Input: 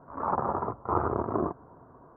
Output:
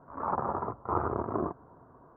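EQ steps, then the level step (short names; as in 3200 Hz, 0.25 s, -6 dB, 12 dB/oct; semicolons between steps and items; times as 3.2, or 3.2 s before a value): air absorption 380 m; high shelf 2200 Hz +10.5 dB; -2.5 dB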